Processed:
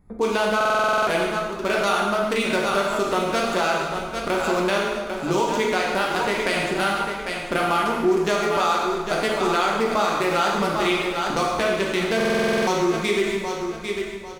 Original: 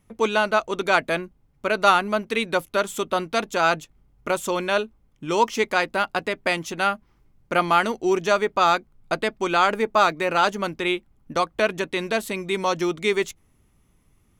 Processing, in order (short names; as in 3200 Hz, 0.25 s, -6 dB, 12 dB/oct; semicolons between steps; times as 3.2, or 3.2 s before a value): Wiener smoothing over 15 samples; high shelf 4300 Hz +10.5 dB; on a send: feedback echo 0.797 s, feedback 31%, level -12 dB; on the sum: compressor, threshold -21 dBFS, peak gain reduction 11 dB; low shelf 100 Hz +7.5 dB; plate-style reverb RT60 1.3 s, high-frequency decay 0.8×, DRR -2 dB; in parallel at +2.5 dB: limiter -17 dBFS, peak gain reduction 10 dB; on the sum: stuck buffer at 0.56/12.16, samples 2048, times 10; gain -5 dB